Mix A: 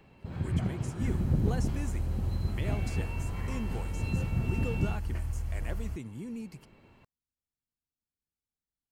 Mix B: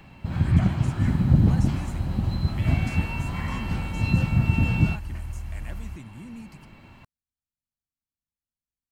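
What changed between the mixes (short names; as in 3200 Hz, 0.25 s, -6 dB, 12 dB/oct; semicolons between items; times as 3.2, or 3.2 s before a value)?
first sound +11.0 dB; master: add bell 440 Hz -11 dB 0.69 oct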